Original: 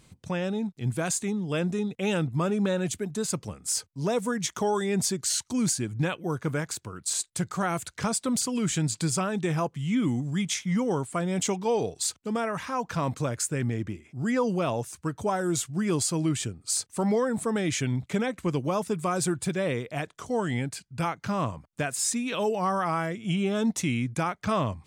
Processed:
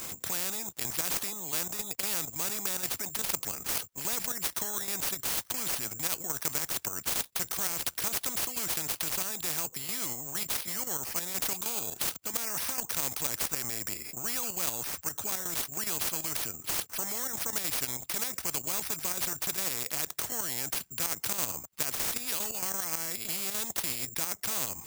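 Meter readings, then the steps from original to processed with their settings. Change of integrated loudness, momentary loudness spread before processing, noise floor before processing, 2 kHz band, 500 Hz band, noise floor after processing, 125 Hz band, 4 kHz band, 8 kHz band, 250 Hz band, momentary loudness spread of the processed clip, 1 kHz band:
-2.0 dB, 5 LU, -63 dBFS, -3.5 dB, -15.0 dB, -53 dBFS, -18.0 dB, +0.5 dB, 0.0 dB, -18.0 dB, 3 LU, -9.5 dB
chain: high shelf 5400 Hz -10.5 dB; notch 3100 Hz, Q 16; level quantiser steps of 9 dB; HPF 130 Hz 6 dB/oct; vocal rider 2 s; careless resampling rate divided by 6×, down none, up zero stuff; dynamic EQ 1800 Hz, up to -5 dB, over -43 dBFS, Q 0.96; spectral compressor 4:1; gain -6.5 dB

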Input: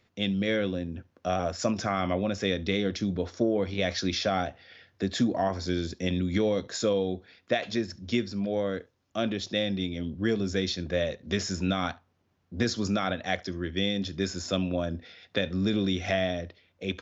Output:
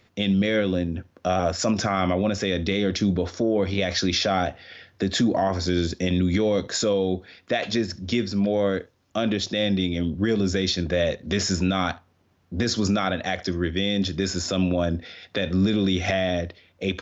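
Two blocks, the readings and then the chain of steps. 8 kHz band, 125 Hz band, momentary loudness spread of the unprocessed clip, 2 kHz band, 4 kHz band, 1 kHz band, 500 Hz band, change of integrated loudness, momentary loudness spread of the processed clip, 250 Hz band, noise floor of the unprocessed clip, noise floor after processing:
n/a, +6.0 dB, 7 LU, +4.5 dB, +5.5 dB, +5.0 dB, +4.5 dB, +5.0 dB, 7 LU, +5.5 dB, -71 dBFS, -63 dBFS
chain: limiter -21 dBFS, peak gain reduction 8 dB; gain +8 dB

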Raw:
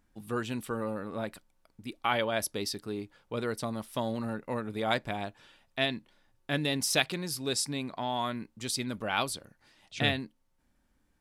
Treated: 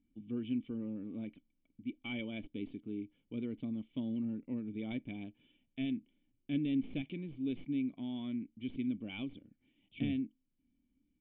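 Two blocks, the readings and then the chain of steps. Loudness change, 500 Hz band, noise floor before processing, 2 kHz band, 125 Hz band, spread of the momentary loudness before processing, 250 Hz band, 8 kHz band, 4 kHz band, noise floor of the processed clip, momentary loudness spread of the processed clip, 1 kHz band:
-7.0 dB, -15.0 dB, -72 dBFS, -16.0 dB, -7.0 dB, 12 LU, +0.5 dB, under -40 dB, -18.0 dB, -80 dBFS, 9 LU, -26.0 dB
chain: tracing distortion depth 0.062 ms; de-esser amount 75%; vocal tract filter i; gain +3.5 dB

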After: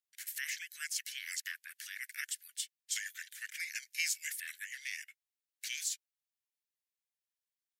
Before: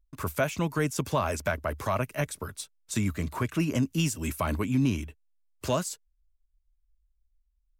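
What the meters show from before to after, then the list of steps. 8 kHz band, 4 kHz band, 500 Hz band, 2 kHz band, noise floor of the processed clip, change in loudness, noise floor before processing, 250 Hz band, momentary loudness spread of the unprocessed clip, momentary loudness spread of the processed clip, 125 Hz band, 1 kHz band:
-0.5 dB, -1.5 dB, under -40 dB, -3.0 dB, under -85 dBFS, -9.5 dB, -73 dBFS, under -40 dB, 10 LU, 9 LU, under -40 dB, under -30 dB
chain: frequency shift -480 Hz; steep high-pass 1600 Hz 72 dB/oct

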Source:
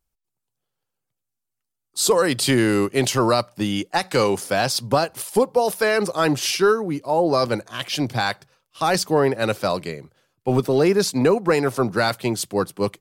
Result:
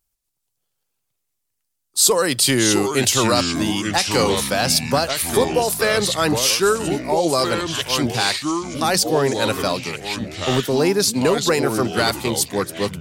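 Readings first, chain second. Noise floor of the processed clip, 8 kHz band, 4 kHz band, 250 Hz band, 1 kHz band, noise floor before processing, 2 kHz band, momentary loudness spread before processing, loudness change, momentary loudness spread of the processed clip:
-76 dBFS, +8.0 dB, +6.5 dB, +1.0 dB, +1.0 dB, -81 dBFS, +2.5 dB, 7 LU, +2.0 dB, 7 LU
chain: high shelf 3300 Hz +9.5 dB; echoes that change speed 0.112 s, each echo -4 st, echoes 3, each echo -6 dB; gain -1 dB

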